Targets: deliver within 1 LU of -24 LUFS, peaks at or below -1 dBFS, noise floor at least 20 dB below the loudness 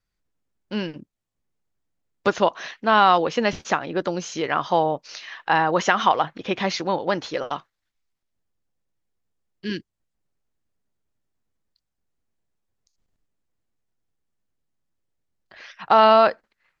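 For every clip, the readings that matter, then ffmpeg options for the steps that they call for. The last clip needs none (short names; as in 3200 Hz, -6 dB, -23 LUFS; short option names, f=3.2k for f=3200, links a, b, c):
loudness -21.5 LUFS; peak -2.0 dBFS; loudness target -24.0 LUFS
-> -af "volume=-2.5dB"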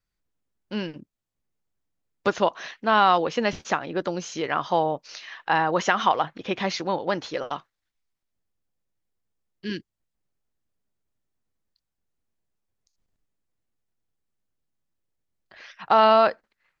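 loudness -24.0 LUFS; peak -4.5 dBFS; noise floor -83 dBFS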